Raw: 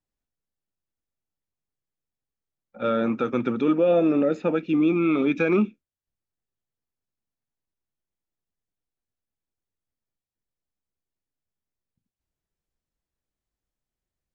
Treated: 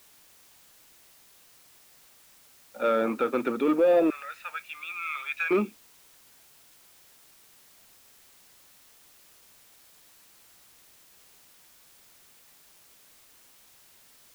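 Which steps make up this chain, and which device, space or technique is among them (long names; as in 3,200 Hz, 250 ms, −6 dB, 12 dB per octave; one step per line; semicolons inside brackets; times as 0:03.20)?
0:04.10–0:05.51: high-pass filter 1,300 Hz 24 dB per octave
tape answering machine (band-pass filter 350–3,300 Hz; soft clipping −16 dBFS, distortion −20 dB; tape wow and flutter 24 cents; white noise bed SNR 24 dB)
level +2 dB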